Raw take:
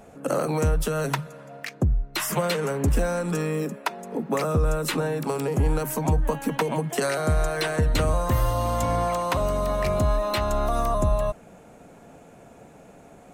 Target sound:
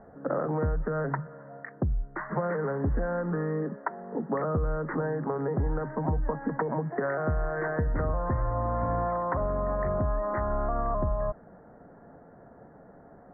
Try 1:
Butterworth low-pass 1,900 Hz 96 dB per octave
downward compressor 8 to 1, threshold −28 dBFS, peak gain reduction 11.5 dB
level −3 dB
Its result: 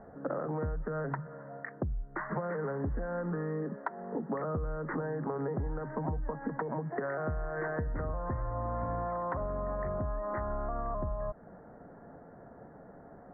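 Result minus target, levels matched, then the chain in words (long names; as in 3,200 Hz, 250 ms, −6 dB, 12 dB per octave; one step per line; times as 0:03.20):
downward compressor: peak gain reduction +7 dB
Butterworth low-pass 1,900 Hz 96 dB per octave
downward compressor 8 to 1, threshold −20 dBFS, peak gain reduction 4.5 dB
level −3 dB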